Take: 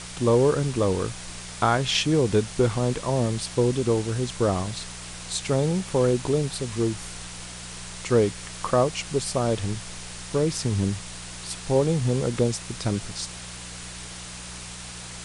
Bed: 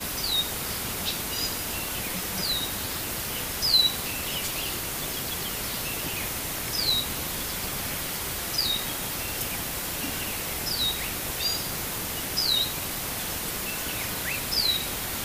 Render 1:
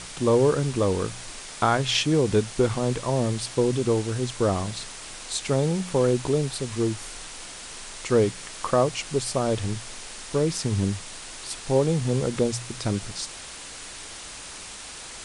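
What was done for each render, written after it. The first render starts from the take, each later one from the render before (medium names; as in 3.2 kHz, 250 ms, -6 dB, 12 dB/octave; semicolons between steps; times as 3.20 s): de-hum 60 Hz, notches 3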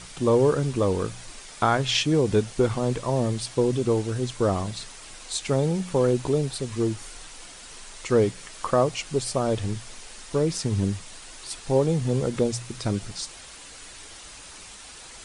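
noise reduction 6 dB, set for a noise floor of -40 dBFS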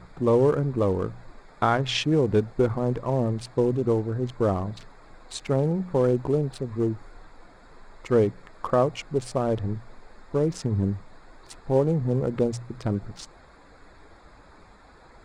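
local Wiener filter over 15 samples; treble shelf 5.8 kHz -10.5 dB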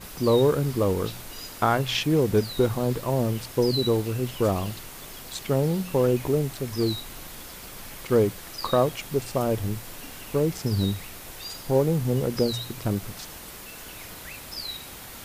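add bed -10.5 dB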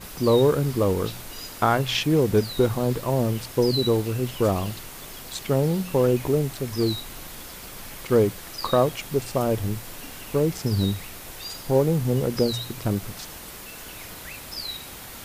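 trim +1.5 dB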